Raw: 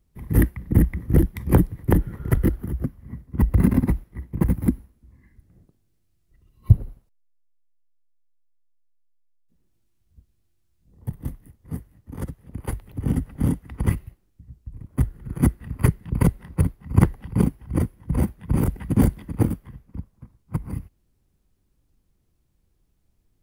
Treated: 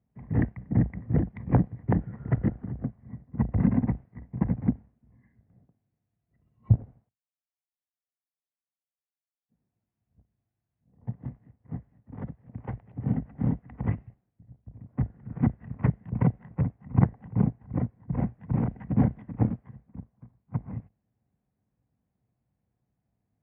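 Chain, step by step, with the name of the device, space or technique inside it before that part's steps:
0:17.00–0:18.11: low-pass filter 2,400 Hz 6 dB per octave
sub-octave bass pedal (sub-octave generator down 2 octaves, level −3 dB; loudspeaker in its box 67–2,100 Hz, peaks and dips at 79 Hz −9 dB, 120 Hz +5 dB, 220 Hz +4 dB, 350 Hz −7 dB, 720 Hz +7 dB, 1,300 Hz −4 dB)
level −6 dB

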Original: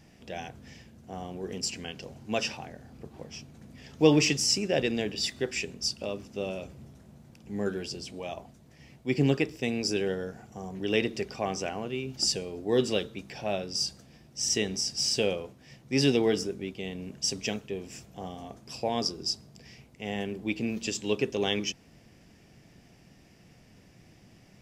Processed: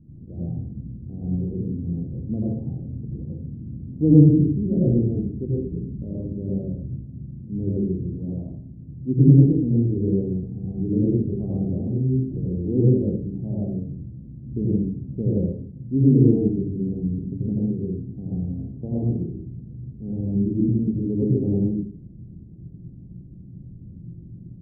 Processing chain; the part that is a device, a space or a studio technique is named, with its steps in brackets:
next room (low-pass filter 300 Hz 24 dB per octave; convolution reverb RT60 0.55 s, pre-delay 81 ms, DRR −6.5 dB)
level +7 dB

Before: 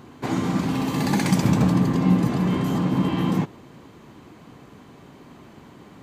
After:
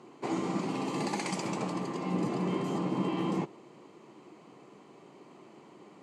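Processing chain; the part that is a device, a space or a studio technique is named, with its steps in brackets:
0:01.08–0:02.14: low-shelf EQ 390 Hz −8.5 dB
television speaker (loudspeaker in its box 170–8,800 Hz, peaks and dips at 170 Hz −4 dB, 250 Hz −8 dB, 360 Hz +4 dB, 1,600 Hz −10 dB, 3,600 Hz −7 dB, 5,800 Hz −4 dB)
level −5 dB

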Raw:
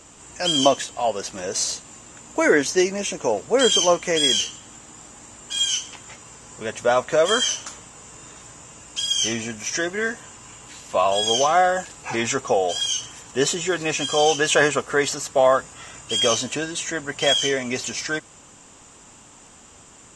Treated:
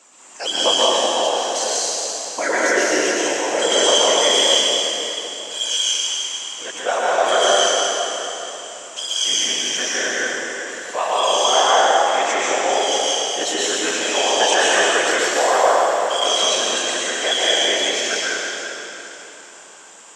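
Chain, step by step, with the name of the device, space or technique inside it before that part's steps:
whispering ghost (random phases in short frames; high-pass filter 490 Hz 12 dB per octave; convolution reverb RT60 3.5 s, pre-delay 112 ms, DRR −7 dB)
level −2.5 dB

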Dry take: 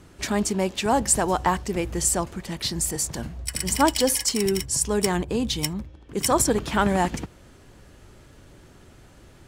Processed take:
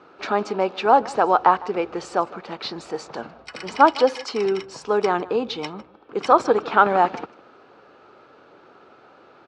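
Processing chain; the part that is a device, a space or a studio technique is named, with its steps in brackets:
phone earpiece (loudspeaker in its box 370–3,800 Hz, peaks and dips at 460 Hz +5 dB, 790 Hz +5 dB, 1,300 Hz +9 dB, 1,900 Hz −8 dB, 3,200 Hz −7 dB)
single-tap delay 155 ms −20.5 dB
level +3.5 dB

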